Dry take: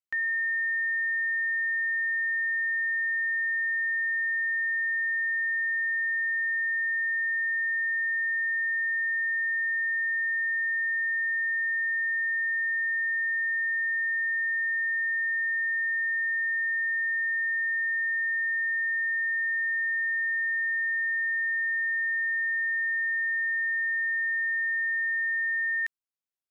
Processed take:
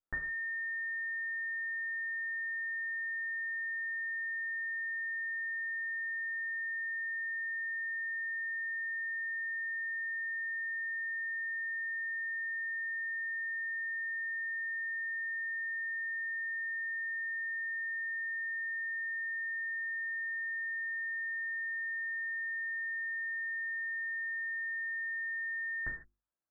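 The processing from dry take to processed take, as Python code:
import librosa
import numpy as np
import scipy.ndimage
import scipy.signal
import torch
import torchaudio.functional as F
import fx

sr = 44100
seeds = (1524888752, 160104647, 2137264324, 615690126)

y = fx.lower_of_two(x, sr, delay_ms=9.9)
y = scipy.signal.sosfilt(scipy.signal.butter(12, 1700.0, 'lowpass', fs=sr, output='sos'), y)
y = fx.hum_notches(y, sr, base_hz=50, count=7)
y = fx.rev_gated(y, sr, seeds[0], gate_ms=180, shape='falling', drr_db=1.5)
y = y * librosa.db_to_amplitude(3.0)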